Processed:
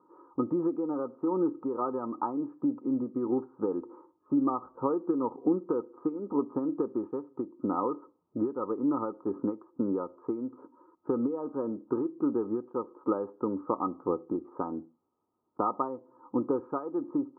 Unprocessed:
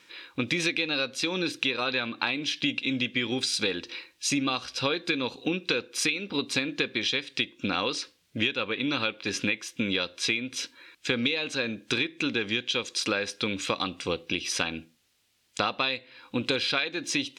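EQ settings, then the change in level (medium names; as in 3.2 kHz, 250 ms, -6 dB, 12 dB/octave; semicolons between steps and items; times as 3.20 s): high-pass 230 Hz 6 dB/octave; rippled Chebyshev low-pass 1.3 kHz, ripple 9 dB; +6.5 dB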